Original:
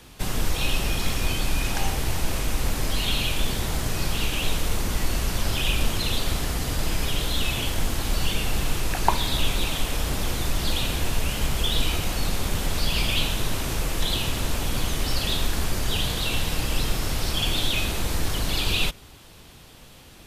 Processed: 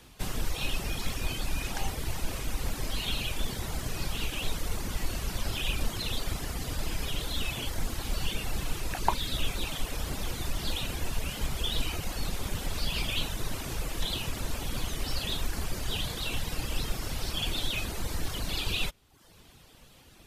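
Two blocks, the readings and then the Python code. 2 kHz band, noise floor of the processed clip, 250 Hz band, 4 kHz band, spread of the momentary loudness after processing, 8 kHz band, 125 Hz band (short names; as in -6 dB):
-7.5 dB, -55 dBFS, -7.5 dB, -7.0 dB, 4 LU, -7.5 dB, -7.5 dB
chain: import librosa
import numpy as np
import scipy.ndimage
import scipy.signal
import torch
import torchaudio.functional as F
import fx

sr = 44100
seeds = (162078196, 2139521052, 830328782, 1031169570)

y = fx.dereverb_blind(x, sr, rt60_s=0.75)
y = y * 10.0 ** (-5.5 / 20.0)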